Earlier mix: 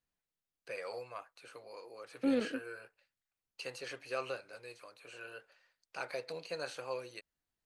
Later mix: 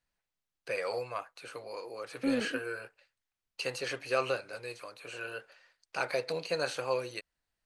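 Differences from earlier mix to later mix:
first voice +8.0 dB; master: add bass shelf 82 Hz +8 dB

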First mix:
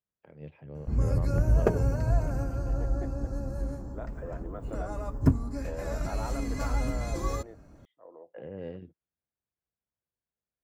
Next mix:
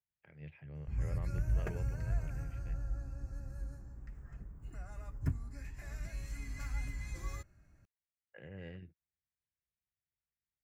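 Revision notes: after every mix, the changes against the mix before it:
second voice: muted; background -8.5 dB; master: add graphic EQ 250/500/1000/2000/4000 Hz -9/-10/-8/+7/-4 dB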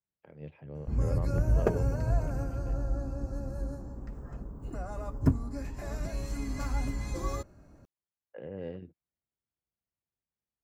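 background +6.0 dB; master: add graphic EQ 250/500/1000/2000/4000 Hz +9/+10/+8/-7/+4 dB

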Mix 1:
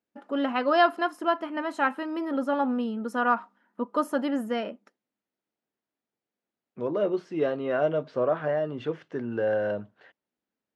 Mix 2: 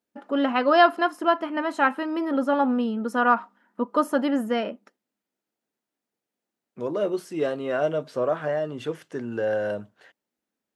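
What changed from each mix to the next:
first voice +4.0 dB; second voice: remove distance through air 200 m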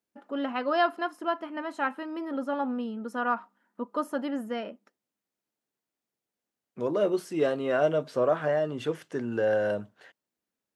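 first voice -8.0 dB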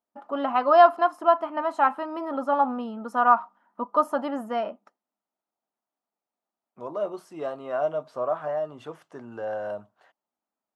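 second voice -10.0 dB; master: add high-order bell 890 Hz +11 dB 1.3 oct

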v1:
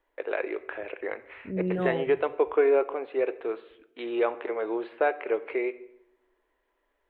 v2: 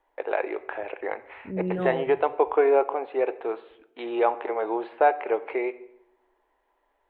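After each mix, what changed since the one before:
first voice: add peaking EQ 820 Hz +11.5 dB 0.62 oct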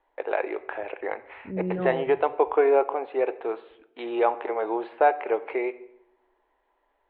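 second voice: add distance through air 340 m

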